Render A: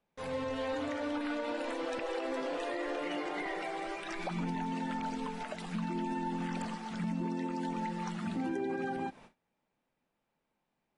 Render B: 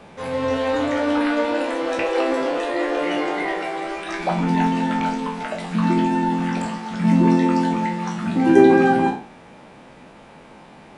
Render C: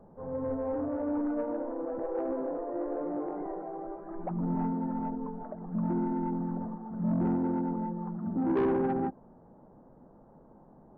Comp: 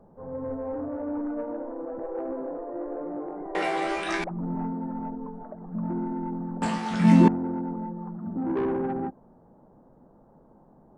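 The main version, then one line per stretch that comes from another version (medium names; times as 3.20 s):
C
3.55–4.24 s: from B
6.62–7.28 s: from B
not used: A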